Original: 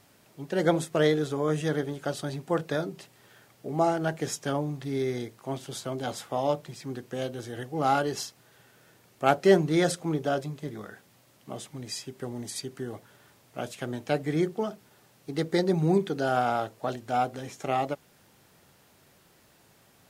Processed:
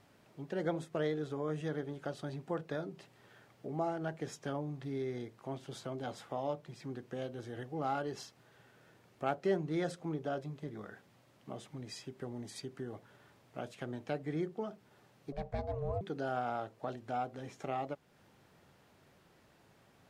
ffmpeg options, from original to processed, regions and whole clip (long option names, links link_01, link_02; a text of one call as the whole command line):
ffmpeg -i in.wav -filter_complex "[0:a]asettb=1/sr,asplit=3[link_01][link_02][link_03];[link_01]atrim=end=15.324[link_04];[link_02]atrim=start=15.32:end=16.01,asetpts=PTS-STARTPTS,afade=type=in:duration=0.004:curve=qsin,afade=type=out:start_time=0.686:duration=0.004:curve=qsin,highshelf=frequency=2800:gain=-8.5,aeval=exprs='val(0)*sin(2*PI*290*n/s)':channel_layout=same[link_05];[link_03]atrim=start=16.006[link_06];[link_04][link_05]acrossfade=duration=0.004:curve1=hsin:curve2=qsin[link_07];[link_07][link_06]acrossfade=duration=0.004:curve1=qsin:curve2=hsin,lowpass=frequency=2600:poles=1,acompressor=threshold=-42dB:ratio=1.5,volume=-3dB" out.wav